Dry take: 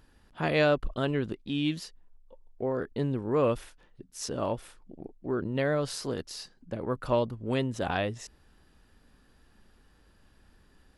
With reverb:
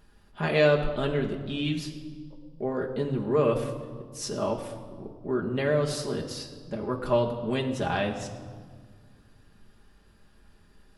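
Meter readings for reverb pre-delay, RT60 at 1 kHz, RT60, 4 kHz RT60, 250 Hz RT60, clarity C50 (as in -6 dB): 5 ms, 1.6 s, 1.7 s, 1.2 s, 2.4 s, 9.0 dB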